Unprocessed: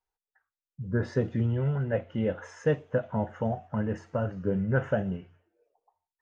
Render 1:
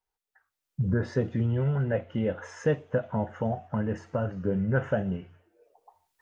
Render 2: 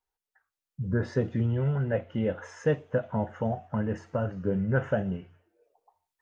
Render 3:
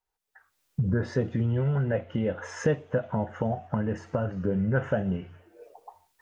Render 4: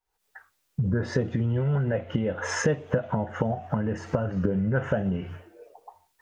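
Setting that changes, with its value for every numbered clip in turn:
camcorder AGC, rising by: 14, 5.4, 36, 89 dB per second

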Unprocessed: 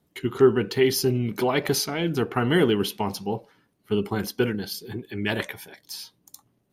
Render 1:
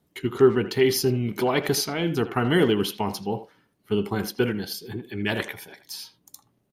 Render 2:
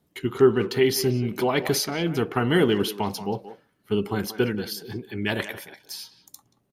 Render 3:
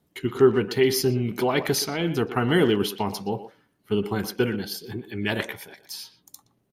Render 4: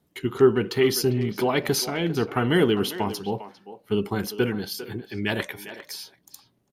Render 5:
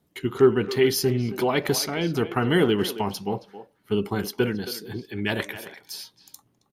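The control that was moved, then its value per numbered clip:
far-end echo of a speakerphone, delay time: 80, 180, 120, 400, 270 milliseconds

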